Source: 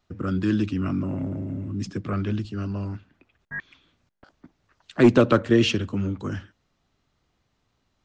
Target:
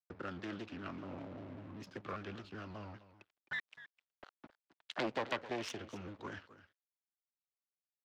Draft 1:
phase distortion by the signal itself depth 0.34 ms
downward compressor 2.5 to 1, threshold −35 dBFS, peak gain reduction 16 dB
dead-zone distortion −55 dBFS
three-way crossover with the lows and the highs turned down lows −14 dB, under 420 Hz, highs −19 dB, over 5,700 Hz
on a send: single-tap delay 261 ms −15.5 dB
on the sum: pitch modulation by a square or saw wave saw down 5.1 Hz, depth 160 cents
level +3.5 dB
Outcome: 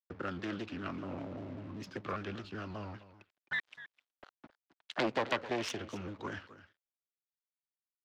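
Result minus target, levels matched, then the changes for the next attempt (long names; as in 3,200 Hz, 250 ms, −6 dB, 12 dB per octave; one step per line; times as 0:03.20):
downward compressor: peak gain reduction −4.5 dB
change: downward compressor 2.5 to 1, threshold −42.5 dBFS, peak gain reduction 20.5 dB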